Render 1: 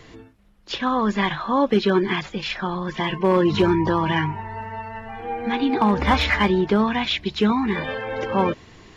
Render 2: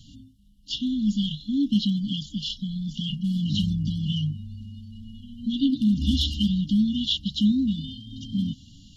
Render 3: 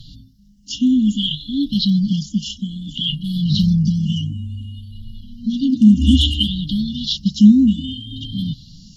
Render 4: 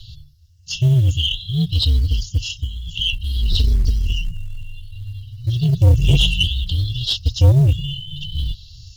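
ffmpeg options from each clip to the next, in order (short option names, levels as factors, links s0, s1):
-af "afftfilt=real='re*(1-between(b*sr/4096,300,2800))':imag='im*(1-between(b*sr/4096,300,2800))':win_size=4096:overlap=0.75"
-af "afftfilt=real='re*pow(10,16/40*sin(2*PI*(0.61*log(max(b,1)*sr/1024/100)/log(2)-(0.59)*(pts-256)/sr)))':imag='im*pow(10,16/40*sin(2*PI*(0.61*log(max(b,1)*sr/1024/100)/log(2)-(0.59)*(pts-256)/sr)))':win_size=1024:overlap=0.75,volume=1.78"
-af "aeval=exprs='(tanh(2.51*val(0)+0.25)-tanh(0.25))/2.51':c=same,afreqshift=-120,acrusher=bits=9:mode=log:mix=0:aa=0.000001,volume=1.26"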